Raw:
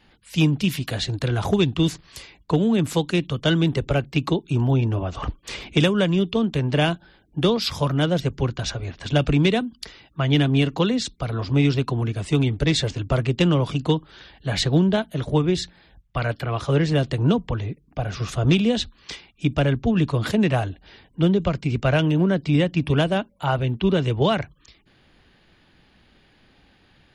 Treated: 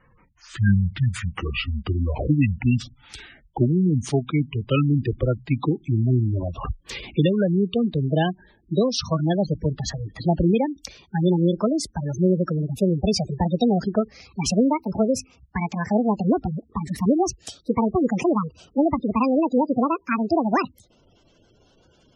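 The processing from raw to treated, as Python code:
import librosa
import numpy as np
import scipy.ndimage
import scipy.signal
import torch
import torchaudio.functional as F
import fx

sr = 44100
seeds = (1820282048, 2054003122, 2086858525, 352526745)

y = fx.speed_glide(x, sr, from_pct=60, to_pct=185)
y = fx.spec_gate(y, sr, threshold_db=-15, keep='strong')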